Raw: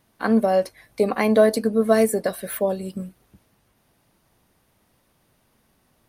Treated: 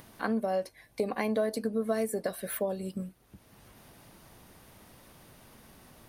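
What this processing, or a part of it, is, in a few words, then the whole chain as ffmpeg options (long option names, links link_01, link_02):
upward and downward compression: -filter_complex "[0:a]acompressor=mode=upward:threshold=-36dB:ratio=2.5,acompressor=threshold=-23dB:ratio=3,asettb=1/sr,asplit=3[link_01][link_02][link_03];[link_01]atrim=end=0.644[link_04];[link_02]atrim=start=0.64:end=1.29,asetpts=PTS-STARTPTS,afade=type=in:duration=0.004:curve=qsin,afade=type=out:start_time=0.646:duration=0.004:curve=qsin,bandreject=frequency=1300:width=6.2[link_05];[link_03]atrim=start=1.286[link_06];[link_04][link_05]acrossfade=duration=0.004:curve1=hsin:curve2=qsin[link_07];[link_07][link_06]acrossfade=duration=0.004:curve1=qsin:curve2=hsin,volume=-5dB"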